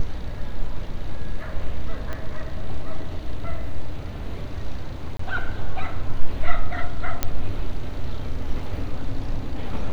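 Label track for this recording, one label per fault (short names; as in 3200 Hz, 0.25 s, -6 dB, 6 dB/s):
2.130000	2.130000	pop -17 dBFS
5.170000	5.190000	gap 24 ms
7.230000	7.230000	pop -6 dBFS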